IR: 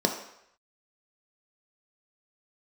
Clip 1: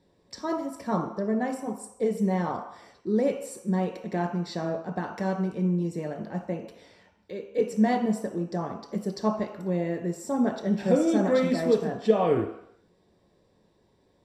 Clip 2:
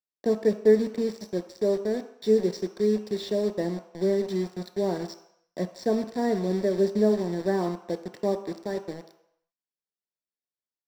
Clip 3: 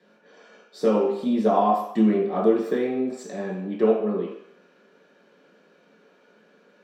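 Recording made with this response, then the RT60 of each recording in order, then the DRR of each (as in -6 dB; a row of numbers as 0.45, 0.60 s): 1; 0.75, 0.75, 0.75 s; 2.5, 7.5, -5.0 dB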